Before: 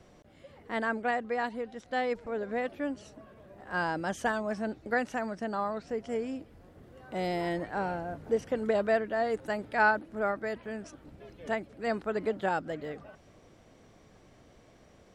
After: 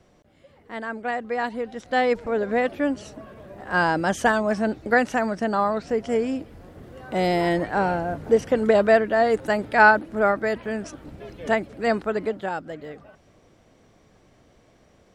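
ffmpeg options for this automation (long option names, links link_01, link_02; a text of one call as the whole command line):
ffmpeg -i in.wav -af "volume=10dB,afade=type=in:start_time=0.87:duration=1.22:silence=0.281838,afade=type=out:start_time=11.78:duration=0.68:silence=0.354813" out.wav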